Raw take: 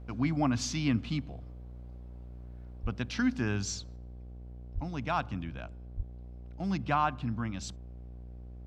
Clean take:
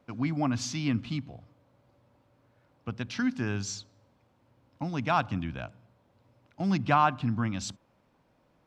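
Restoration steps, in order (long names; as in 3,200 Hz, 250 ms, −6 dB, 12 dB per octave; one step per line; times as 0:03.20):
hum removal 60.7 Hz, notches 13
high-pass at the plosives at 0:02.82/0:04.74/0:05.96
level correction +5 dB, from 0:03.96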